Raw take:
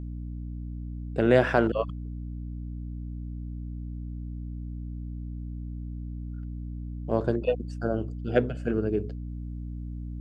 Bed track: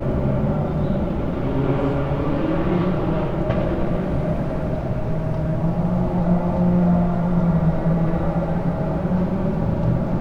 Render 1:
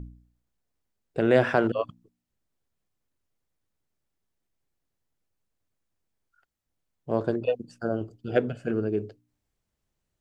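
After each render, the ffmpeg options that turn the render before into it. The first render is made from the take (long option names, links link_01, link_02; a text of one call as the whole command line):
ffmpeg -i in.wav -af "bandreject=frequency=60:width_type=h:width=4,bandreject=frequency=120:width_type=h:width=4,bandreject=frequency=180:width_type=h:width=4,bandreject=frequency=240:width_type=h:width=4,bandreject=frequency=300:width_type=h:width=4" out.wav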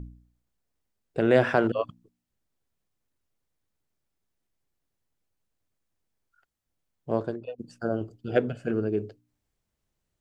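ffmpeg -i in.wav -filter_complex "[0:a]asplit=2[link_01][link_02];[link_01]atrim=end=7.58,asetpts=PTS-STARTPTS,afade=type=out:start_time=7.14:duration=0.44:curve=qua:silence=0.223872[link_03];[link_02]atrim=start=7.58,asetpts=PTS-STARTPTS,afade=type=in:duration=0.004:curve=hsin:silence=0.223872[link_04];[link_03][link_04]concat=n=2:v=0:a=1" out.wav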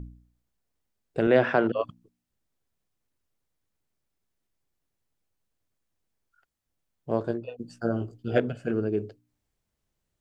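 ffmpeg -i in.wav -filter_complex "[0:a]asettb=1/sr,asplit=3[link_01][link_02][link_03];[link_01]atrim=end=1.274[link_04];[link_02]atrim=start=1.27:end=1.81,asetpts=PTS-STARTPTS,afade=type=in:duration=0.004:curve=qsin,afade=type=out:start_time=0.536:duration=0.004:curve=qsin,highpass=130,lowpass=4100[link_05];[link_03]atrim=start=1.806[link_06];[link_04][link_05]acrossfade=duration=0.004:curve1=hsin:curve2=qsin[link_07];[link_07][link_06]acrossfade=duration=0.004:curve1=qsin:curve2=hsin,asettb=1/sr,asplit=3[link_08][link_09][link_10];[link_08]atrim=end=7.234[link_11];[link_09]atrim=start=7.23:end=8.4,asetpts=PTS-STARTPTS,afade=type=in:duration=0.004:curve=qsin,afade=type=out:start_time=1.166:duration=0.004:curve=qsin,asplit=2[link_12][link_13];[link_13]adelay=17,volume=-4dB[link_14];[link_12][link_14]amix=inputs=2:normalize=0,atrim=end_sample=51597[link_15];[link_10]atrim=start=8.396[link_16];[link_11][link_15]acrossfade=duration=0.004:curve1=hsin:curve2=qsin[link_17];[link_17][link_16]acrossfade=duration=0.004:curve1=qsin:curve2=hsin" out.wav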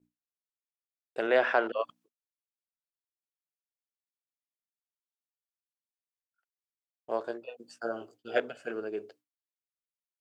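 ffmpeg -i in.wav -af "highpass=590,agate=range=-33dB:threshold=-55dB:ratio=3:detection=peak" out.wav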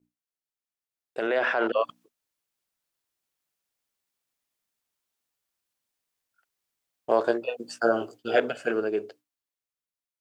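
ffmpeg -i in.wav -af "alimiter=limit=-22dB:level=0:latency=1:release=30,dynaudnorm=framelen=380:gausssize=9:maxgain=12.5dB" out.wav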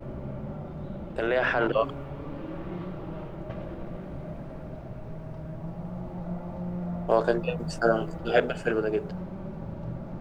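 ffmpeg -i in.wav -i bed.wav -filter_complex "[1:a]volume=-16dB[link_01];[0:a][link_01]amix=inputs=2:normalize=0" out.wav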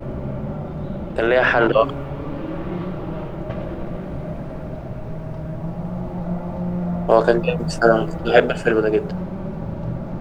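ffmpeg -i in.wav -af "volume=9dB,alimiter=limit=-1dB:level=0:latency=1" out.wav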